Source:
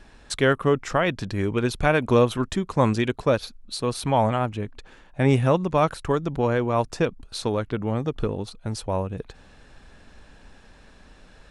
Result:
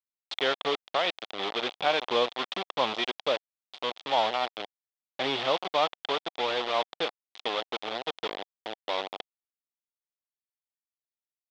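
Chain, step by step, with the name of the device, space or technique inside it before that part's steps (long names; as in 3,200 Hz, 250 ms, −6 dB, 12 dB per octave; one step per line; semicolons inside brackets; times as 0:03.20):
hand-held game console (bit reduction 4 bits; loudspeaker in its box 500–4,400 Hz, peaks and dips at 750 Hz +4 dB, 1,600 Hz −5 dB, 3,400 Hz +10 dB)
level −5 dB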